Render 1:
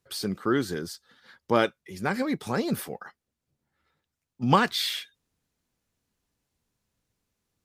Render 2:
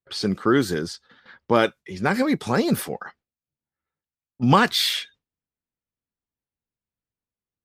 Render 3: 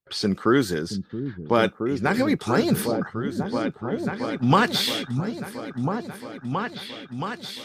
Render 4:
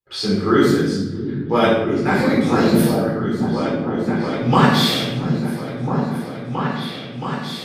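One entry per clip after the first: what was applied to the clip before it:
gate with hold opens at -48 dBFS; low-pass opened by the level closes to 2700 Hz, open at -24.5 dBFS; in parallel at +1 dB: limiter -15 dBFS, peak gain reduction 9.5 dB
vocal rider 2 s; repeats that get brighter 0.673 s, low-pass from 200 Hz, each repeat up 2 oct, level -3 dB; gain -2 dB
shoebox room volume 390 m³, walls mixed, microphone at 4 m; gain -5.5 dB

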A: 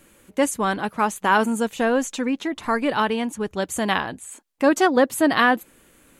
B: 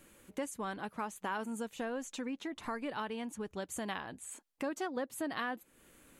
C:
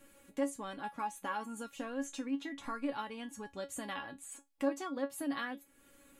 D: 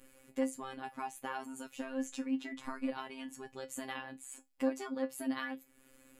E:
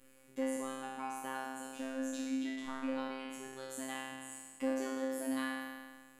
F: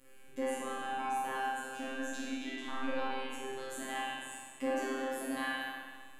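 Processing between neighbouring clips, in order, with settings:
compressor 2.5:1, threshold -34 dBFS, peak gain reduction 14.5 dB; gain -6.5 dB
resonator 280 Hz, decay 0.16 s, harmonics all, mix 90%; gain +9 dB
robotiser 132 Hz; gain +2 dB
spectral trails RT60 1.57 s; gain -4 dB
spring tank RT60 1.5 s, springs 40 ms, chirp 35 ms, DRR -6.5 dB

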